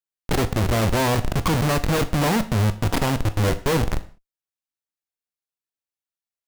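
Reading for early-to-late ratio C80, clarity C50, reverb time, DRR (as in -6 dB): 20.0 dB, 16.0 dB, no single decay rate, 10.5 dB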